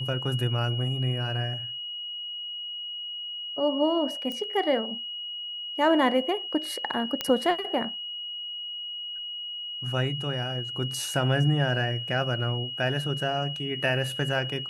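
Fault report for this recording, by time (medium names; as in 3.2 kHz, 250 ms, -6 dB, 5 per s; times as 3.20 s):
whine 2.9 kHz -33 dBFS
4.32 s: pop -21 dBFS
7.21 s: pop -12 dBFS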